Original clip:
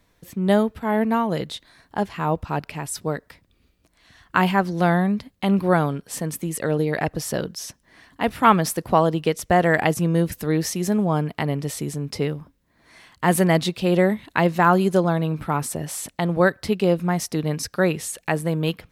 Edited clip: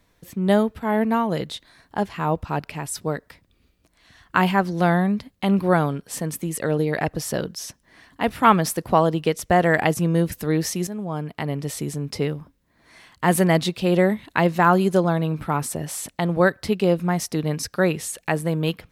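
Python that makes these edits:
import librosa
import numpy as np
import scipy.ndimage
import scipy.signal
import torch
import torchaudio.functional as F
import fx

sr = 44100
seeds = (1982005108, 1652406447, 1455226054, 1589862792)

y = fx.edit(x, sr, fx.fade_in_from(start_s=10.87, length_s=0.92, floor_db=-12.5), tone=tone)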